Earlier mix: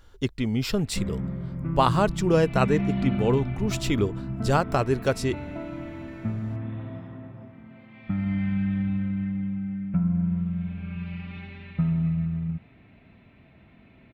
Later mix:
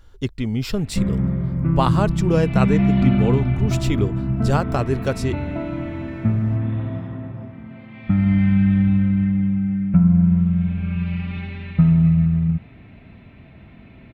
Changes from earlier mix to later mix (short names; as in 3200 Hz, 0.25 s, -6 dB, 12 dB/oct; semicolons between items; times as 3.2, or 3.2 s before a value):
background +7.0 dB; master: add low shelf 160 Hz +6 dB